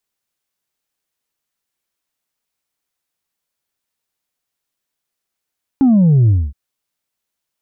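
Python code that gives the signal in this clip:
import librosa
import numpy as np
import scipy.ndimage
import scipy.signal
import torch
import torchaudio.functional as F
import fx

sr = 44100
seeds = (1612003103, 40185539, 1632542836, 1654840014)

y = fx.sub_drop(sr, level_db=-8.0, start_hz=280.0, length_s=0.72, drive_db=2, fade_s=0.24, end_hz=65.0)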